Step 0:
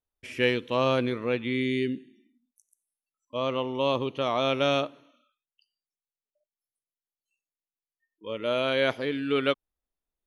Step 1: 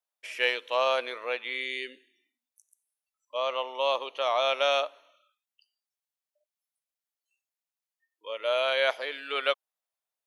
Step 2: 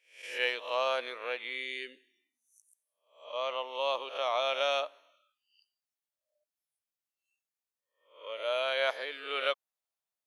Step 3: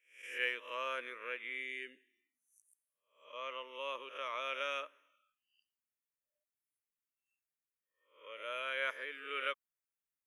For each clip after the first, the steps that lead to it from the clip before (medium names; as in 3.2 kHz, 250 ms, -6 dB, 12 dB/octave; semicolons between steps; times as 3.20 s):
Chebyshev high-pass 610 Hz, order 3; trim +2 dB
reverse spectral sustain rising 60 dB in 0.45 s; trim -5 dB
static phaser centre 1.8 kHz, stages 4; trim -2.5 dB